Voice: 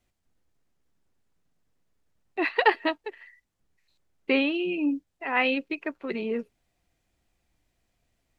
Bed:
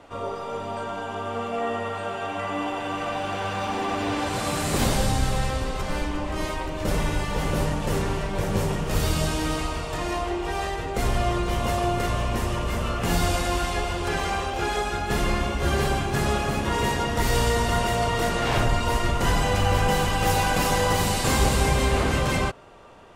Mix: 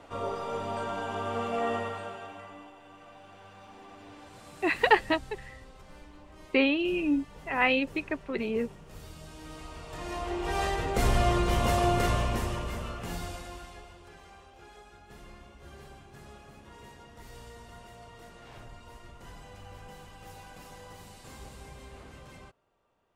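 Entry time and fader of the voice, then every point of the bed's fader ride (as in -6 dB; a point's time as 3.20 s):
2.25 s, -0.5 dB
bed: 1.75 s -2.5 dB
2.75 s -23 dB
9.22 s -23 dB
10.62 s -1 dB
12.09 s -1 dB
14.16 s -26 dB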